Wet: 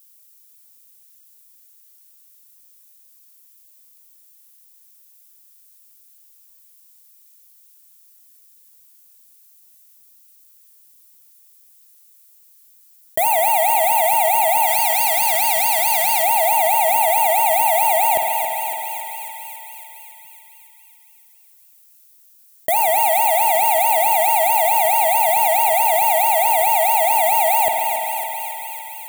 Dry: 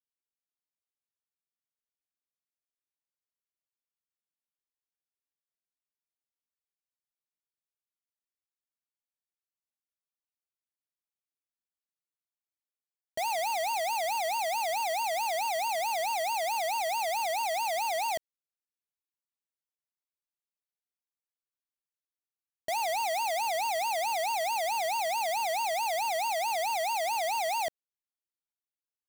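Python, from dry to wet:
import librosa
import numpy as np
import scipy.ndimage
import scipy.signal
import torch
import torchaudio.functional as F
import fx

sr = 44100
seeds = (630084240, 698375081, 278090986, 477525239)

y = F.preemphasis(torch.from_numpy(x), 0.8).numpy()
y = fx.spec_erase(y, sr, start_s=14.67, length_s=1.55, low_hz=260.0, high_hz=1700.0)
y = fx.high_shelf(y, sr, hz=6800.0, db=8.5)
y = fx.leveller(y, sr, passes=5)
y = fx.echo_thinned(y, sr, ms=277, feedback_pct=51, hz=790.0, wet_db=-9.0)
y = fx.rev_spring(y, sr, rt60_s=2.0, pass_ms=(50,), chirp_ms=60, drr_db=8.0)
y = fx.env_flatten(y, sr, amount_pct=50)
y = y * librosa.db_to_amplitude(7.0)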